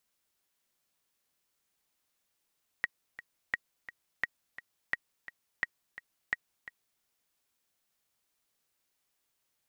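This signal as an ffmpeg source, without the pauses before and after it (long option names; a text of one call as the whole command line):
ffmpeg -f lavfi -i "aevalsrc='pow(10,(-15.5-15*gte(mod(t,2*60/172),60/172))/20)*sin(2*PI*1900*mod(t,60/172))*exp(-6.91*mod(t,60/172)/0.03)':duration=4.18:sample_rate=44100" out.wav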